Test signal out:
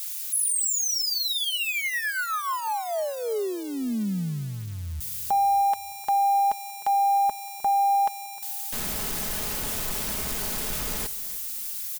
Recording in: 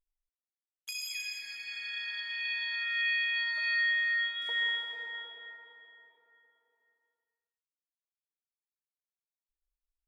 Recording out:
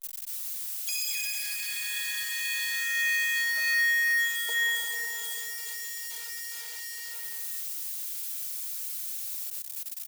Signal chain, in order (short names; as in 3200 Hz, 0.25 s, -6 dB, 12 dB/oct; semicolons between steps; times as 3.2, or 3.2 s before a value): switching spikes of -29.5 dBFS; comb 4.7 ms, depth 42%; feedback echo 0.307 s, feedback 49%, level -19 dB; gain +2.5 dB